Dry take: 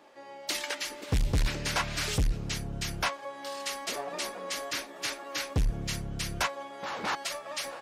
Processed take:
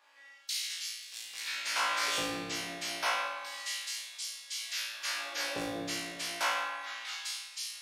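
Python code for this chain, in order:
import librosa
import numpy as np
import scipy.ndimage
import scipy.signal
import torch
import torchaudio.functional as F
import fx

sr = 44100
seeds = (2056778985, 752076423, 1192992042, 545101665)

y = fx.filter_lfo_highpass(x, sr, shape='sine', hz=0.3, low_hz=330.0, high_hz=4600.0, q=0.96)
y = fx.room_flutter(y, sr, wall_m=3.0, rt60_s=0.7)
y = fx.rev_spring(y, sr, rt60_s=1.4, pass_ms=(56,), chirp_ms=25, drr_db=1.0)
y = y * librosa.db_to_amplitude(-6.0)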